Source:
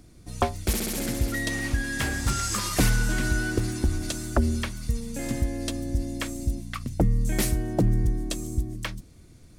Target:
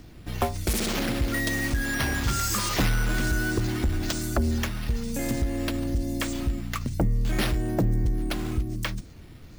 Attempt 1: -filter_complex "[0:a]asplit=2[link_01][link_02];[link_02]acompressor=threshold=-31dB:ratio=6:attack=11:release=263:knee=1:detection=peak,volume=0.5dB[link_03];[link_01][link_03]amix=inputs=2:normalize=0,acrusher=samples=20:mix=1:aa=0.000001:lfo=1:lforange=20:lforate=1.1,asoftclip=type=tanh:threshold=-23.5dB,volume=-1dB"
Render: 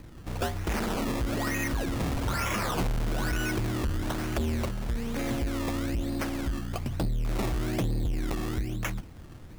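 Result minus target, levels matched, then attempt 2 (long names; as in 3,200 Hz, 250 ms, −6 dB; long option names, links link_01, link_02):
soft clipping: distortion +8 dB; sample-and-hold swept by an LFO: distortion +6 dB
-filter_complex "[0:a]asplit=2[link_01][link_02];[link_02]acompressor=threshold=-31dB:ratio=6:attack=11:release=263:knee=1:detection=peak,volume=0.5dB[link_03];[link_01][link_03]amix=inputs=2:normalize=0,acrusher=samples=4:mix=1:aa=0.000001:lfo=1:lforange=4:lforate=1.1,asoftclip=type=tanh:threshold=-15.5dB,volume=-1dB"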